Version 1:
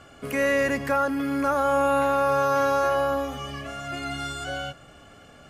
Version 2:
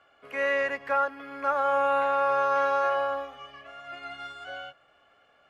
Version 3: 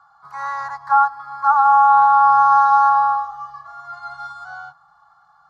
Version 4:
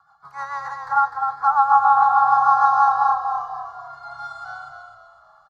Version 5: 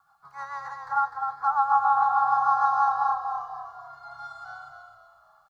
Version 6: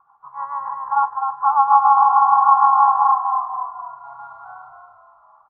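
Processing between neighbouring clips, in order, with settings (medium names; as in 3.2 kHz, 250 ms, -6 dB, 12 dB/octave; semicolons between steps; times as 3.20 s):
three-band isolator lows -18 dB, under 470 Hz, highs -19 dB, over 3.8 kHz; upward expansion 1.5:1, over -41 dBFS
FFT filter 110 Hz 0 dB, 170 Hz +6 dB, 250 Hz -29 dB, 580 Hz -22 dB, 830 Hz +14 dB, 1.3 kHz +9 dB, 2.7 kHz -29 dB, 4.1 kHz +4 dB, 6.7 kHz +1 dB, 9.9 kHz -6 dB; trim +3 dB
rotary cabinet horn 6.7 Hz, later 1 Hz, at 2.55 s; on a send: frequency-shifting echo 251 ms, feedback 41%, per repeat -32 Hz, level -5.5 dB
word length cut 12-bit, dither none; trim -6.5 dB
CVSD coder 64 kbps; resonant low-pass 1 kHz, resonance Q 11; trim -2 dB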